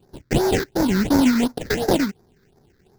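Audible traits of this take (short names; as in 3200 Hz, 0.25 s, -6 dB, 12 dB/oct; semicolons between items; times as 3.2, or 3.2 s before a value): aliases and images of a low sample rate 1200 Hz, jitter 20%; phasing stages 6, 2.8 Hz, lowest notch 730–2900 Hz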